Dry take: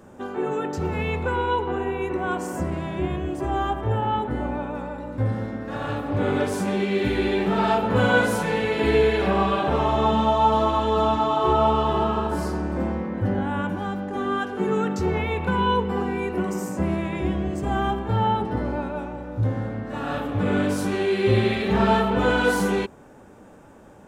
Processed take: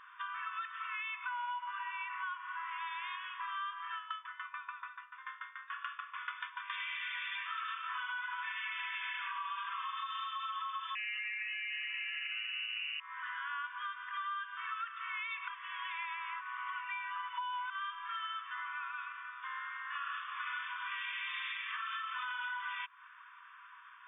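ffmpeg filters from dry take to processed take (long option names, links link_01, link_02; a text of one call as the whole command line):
ffmpeg -i in.wav -filter_complex "[0:a]asettb=1/sr,asplit=3[link_01][link_02][link_03];[link_01]atrim=end=3.964[link_04];[link_02]atrim=start=3.96:end=6.7,asetpts=PTS-STARTPTS,afade=type=in:duration=0.004:curve=qsin,afade=type=out:start_time=2.736:duration=0.004:curve=qsin,aeval=exprs='val(0)*pow(10,-20*if(lt(mod(6.9*n/s,1),2*abs(6.9)/1000),1-mod(6.9*n/s,1)/(2*abs(6.9)/1000),(mod(6.9*n/s,1)-2*abs(6.9)/1000)/(1-2*abs(6.9)/1000))/20)':channel_layout=same[link_05];[link_03]atrim=start=6.696[link_06];[link_04][link_05]acrossfade=duration=0.004:curve1=hsin:curve2=qsin[link_07];[link_07][link_06]acrossfade=duration=0.004:curve1=qsin:curve2=hsin,asettb=1/sr,asplit=3[link_08][link_09][link_10];[link_08]atrim=end=10.954[link_11];[link_09]atrim=start=10.95:end=13,asetpts=PTS-STARTPTS,afade=type=in:duration=0.004:curve=qsin,afade=type=out:start_time=2.046:duration=0.004:curve=qsin,lowpass=frequency=2600:width_type=q:width=0.5098,lowpass=frequency=2600:width_type=q:width=0.6013,lowpass=frequency=2600:width_type=q:width=0.9,lowpass=frequency=2600:width_type=q:width=2.563,afreqshift=-3000[link_12];[link_10]atrim=start=12.996[link_13];[link_11][link_12]acrossfade=duration=0.004:curve1=hsin:curve2=qsin[link_14];[link_14][link_13]acrossfade=duration=0.004:curve1=qsin:curve2=hsin,asplit=3[link_15][link_16][link_17];[link_15]atrim=end=15.482[link_18];[link_16]atrim=start=15.478:end=17.702,asetpts=PTS-STARTPTS,areverse[link_19];[link_17]atrim=start=17.698[link_20];[link_18][link_19]acrossfade=duration=0.004:curve1=hsin:curve2=hsin[link_21];[link_21][link_20]acrossfade=duration=0.004:curve1=hsin:curve2=hsin,afftfilt=real='re*between(b*sr/4096,950,3600)':imag='im*between(b*sr/4096,950,3600)':win_size=4096:overlap=0.75,alimiter=limit=-22.5dB:level=0:latency=1:release=128,acompressor=threshold=-42dB:ratio=6,volume=4dB" out.wav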